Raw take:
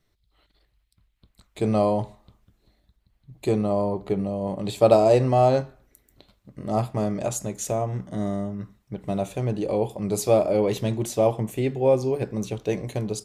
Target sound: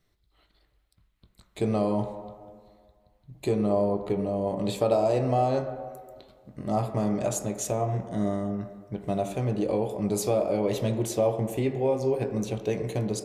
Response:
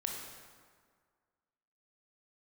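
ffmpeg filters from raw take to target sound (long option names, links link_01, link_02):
-filter_complex "[0:a]acompressor=threshold=-23dB:ratio=2.5,asplit=2[link_01][link_02];[link_02]highpass=200,lowpass=2200[link_03];[1:a]atrim=start_sample=2205,adelay=20[link_04];[link_03][link_04]afir=irnorm=-1:irlink=0,volume=-5.5dB[link_05];[link_01][link_05]amix=inputs=2:normalize=0,volume=-1dB"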